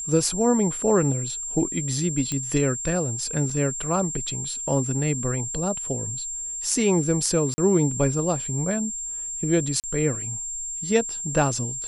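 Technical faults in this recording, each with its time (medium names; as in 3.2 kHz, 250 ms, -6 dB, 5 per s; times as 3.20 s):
whine 7.4 kHz -29 dBFS
2.32 s: pop -13 dBFS
3.50 s: dropout 4 ms
7.54–7.58 s: dropout 40 ms
9.80–9.84 s: dropout 38 ms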